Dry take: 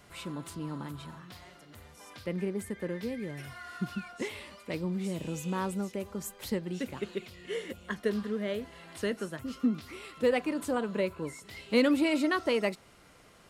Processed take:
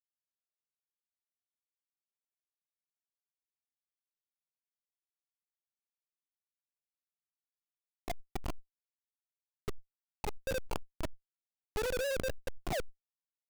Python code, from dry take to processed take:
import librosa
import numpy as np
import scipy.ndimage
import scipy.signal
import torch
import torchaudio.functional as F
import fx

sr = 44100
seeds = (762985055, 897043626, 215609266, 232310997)

y = fx.pitch_bins(x, sr, semitones=9.5)
y = fx.dynamic_eq(y, sr, hz=550.0, q=6.1, threshold_db=-51.0, ratio=4.0, max_db=6)
y = y + 10.0 ** (-53.0 / 20.0) * np.sin(2.0 * np.pi * 1200.0 * np.arange(len(y)) / sr)
y = fx.low_shelf(y, sr, hz=390.0, db=-4.0)
y = fx.spec_paint(y, sr, seeds[0], shape='fall', start_s=12.4, length_s=0.4, low_hz=470.0, high_hz=6300.0, level_db=-24.0)
y = fx.comb_fb(y, sr, f0_hz=98.0, decay_s=1.1, harmonics='all', damping=0.0, mix_pct=50)
y = fx.auto_wah(y, sr, base_hz=510.0, top_hz=4000.0, q=4.1, full_db=-33.5, direction='down')
y = fx.schmitt(y, sr, flips_db=-38.0)
y = fx.sustainer(y, sr, db_per_s=36.0)
y = y * librosa.db_to_amplitude(13.0)